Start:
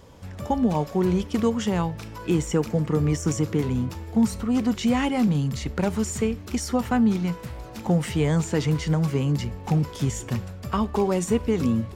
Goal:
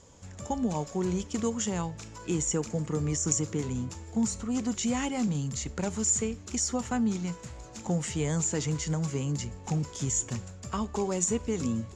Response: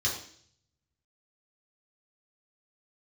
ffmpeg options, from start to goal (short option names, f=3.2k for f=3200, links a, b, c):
-af "lowpass=f=7k:t=q:w=7.1,volume=-7.5dB"